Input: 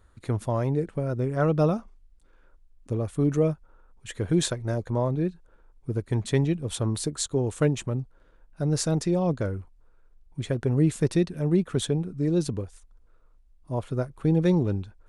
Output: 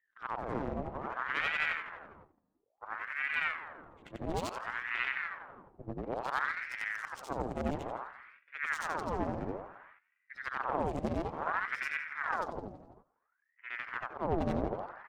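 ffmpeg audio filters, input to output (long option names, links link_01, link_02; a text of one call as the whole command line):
ffmpeg -i in.wav -filter_complex "[0:a]afftfilt=real='re':imag='-im':win_size=8192:overlap=0.75,asplit=2[link_01][link_02];[link_02]adynamicsmooth=sensitivity=4:basefreq=6800,volume=1dB[link_03];[link_01][link_03]amix=inputs=2:normalize=0,aeval=exprs='0.398*(cos(1*acos(clip(val(0)/0.398,-1,1)))-cos(1*PI/2))+0.02*(cos(2*acos(clip(val(0)/0.398,-1,1)))-cos(2*PI/2))+0.0398*(cos(3*acos(clip(val(0)/0.398,-1,1)))-cos(3*PI/2))+0.0631*(cos(4*acos(clip(val(0)/0.398,-1,1)))-cos(4*PI/2))+0.02*(cos(8*acos(clip(val(0)/0.398,-1,1)))-cos(8*PI/2))':channel_layout=same,adynamicequalizer=threshold=0.00178:dfrequency=3800:dqfactor=3.3:tfrequency=3800:tqfactor=3.3:attack=5:release=100:ratio=0.375:range=3:mode=cutabove:tftype=bell,aeval=exprs='val(0)+0.00224*(sin(2*PI*50*n/s)+sin(2*PI*2*50*n/s)/2+sin(2*PI*3*50*n/s)/3+sin(2*PI*4*50*n/s)/4+sin(2*PI*5*50*n/s)/5)':channel_layout=same,asplit=2[link_04][link_05];[link_05]asplit=5[link_06][link_07][link_08][link_09][link_10];[link_06]adelay=166,afreqshift=77,volume=-13.5dB[link_11];[link_07]adelay=332,afreqshift=154,volume=-19.9dB[link_12];[link_08]adelay=498,afreqshift=231,volume=-26.3dB[link_13];[link_09]adelay=664,afreqshift=308,volume=-32.6dB[link_14];[link_10]adelay=830,afreqshift=385,volume=-39dB[link_15];[link_11][link_12][link_13][link_14][link_15]amix=inputs=5:normalize=0[link_16];[link_04][link_16]amix=inputs=2:normalize=0,agate=range=-17dB:threshold=-44dB:ratio=16:detection=peak,equalizer=frequency=170:width=3.4:gain=-12.5,adynamicsmooth=sensitivity=7:basefreq=2100,aeval=exprs='val(0)*sin(2*PI*1100*n/s+1100*0.8/0.58*sin(2*PI*0.58*n/s))':channel_layout=same,volume=-8dB" out.wav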